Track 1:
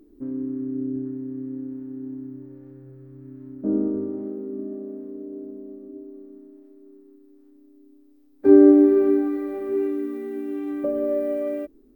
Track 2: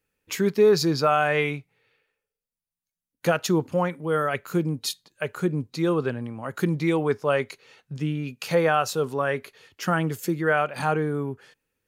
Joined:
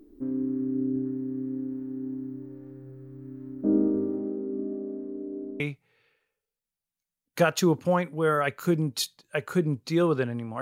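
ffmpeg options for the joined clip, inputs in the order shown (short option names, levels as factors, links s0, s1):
-filter_complex "[0:a]asettb=1/sr,asplit=3[s0][s1][s2];[s0]atrim=end=4.184[s3];[s1]atrim=start=4.18:end=5.6,asetpts=PTS-STARTPTS,afade=t=in:d=0.004:c=qsin,afade=t=out:st=1.416:d=0.004:c=qsin,lowpass=f=1700:p=1[s4];[s2]atrim=start=5.596[s5];[s3][s4]acrossfade=d=0.004:c1=hsin:c2=qsin[s6];[s6][s5]acrossfade=d=0.004:c1=qsin:c2=hsin,apad=whole_dur=10.61,atrim=end=10.61,atrim=end=5.602[s7];[1:a]atrim=start=1.468:end=6.48[s8];[s7][s8]acrossfade=d=0.004:c1=hsin:c2=hsin"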